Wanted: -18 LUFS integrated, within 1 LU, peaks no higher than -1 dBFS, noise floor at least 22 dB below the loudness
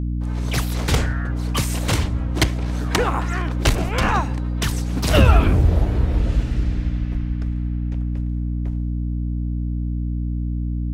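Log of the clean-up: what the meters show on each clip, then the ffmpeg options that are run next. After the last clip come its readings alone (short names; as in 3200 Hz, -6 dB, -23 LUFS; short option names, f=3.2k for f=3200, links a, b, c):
hum 60 Hz; harmonics up to 300 Hz; hum level -21 dBFS; loudness -22.0 LUFS; peak -1.5 dBFS; loudness target -18.0 LUFS
-> -af "bandreject=f=60:t=h:w=6,bandreject=f=120:t=h:w=6,bandreject=f=180:t=h:w=6,bandreject=f=240:t=h:w=6,bandreject=f=300:t=h:w=6"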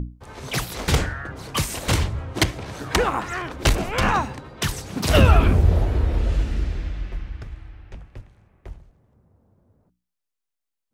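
hum none; loudness -22.5 LUFS; peak -3.0 dBFS; loudness target -18.0 LUFS
-> -af "volume=4.5dB,alimiter=limit=-1dB:level=0:latency=1"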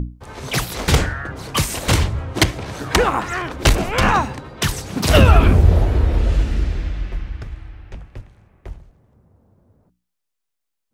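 loudness -18.5 LUFS; peak -1.0 dBFS; noise floor -77 dBFS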